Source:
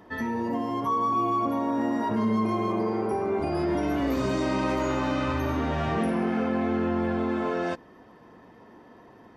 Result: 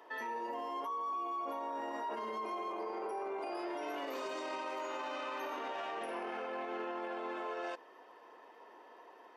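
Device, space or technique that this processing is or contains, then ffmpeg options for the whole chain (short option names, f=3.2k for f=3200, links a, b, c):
laptop speaker: -af "highpass=f=400:w=0.5412,highpass=f=400:w=1.3066,equalizer=f=950:t=o:w=0.37:g=4,equalizer=f=2.8k:t=o:w=0.31:g=5.5,alimiter=level_in=4.5dB:limit=-24dB:level=0:latency=1:release=33,volume=-4.5dB,volume=-4dB"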